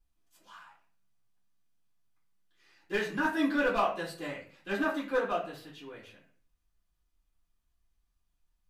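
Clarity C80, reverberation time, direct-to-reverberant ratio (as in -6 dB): 12.0 dB, 0.45 s, -8.5 dB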